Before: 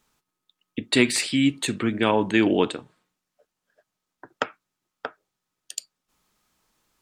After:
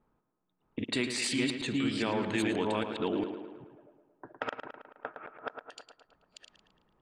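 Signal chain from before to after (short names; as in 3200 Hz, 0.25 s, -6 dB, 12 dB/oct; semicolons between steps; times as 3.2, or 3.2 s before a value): reverse delay 0.405 s, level 0 dB; compressor 3:1, threshold -33 dBFS, peak gain reduction 16.5 dB; low-pass opened by the level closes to 840 Hz, open at -27.5 dBFS; on a send: tape echo 0.11 s, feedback 65%, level -8.5 dB, low-pass 3900 Hz; on the sum: transient shaper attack -3 dB, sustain +1 dB; gain +1.5 dB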